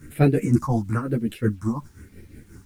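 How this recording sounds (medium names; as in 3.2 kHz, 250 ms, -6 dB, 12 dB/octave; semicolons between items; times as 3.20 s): phasing stages 4, 1 Hz, lowest notch 420–1100 Hz; tremolo triangle 5.6 Hz, depth 80%; a quantiser's noise floor 12-bit, dither none; a shimmering, thickened sound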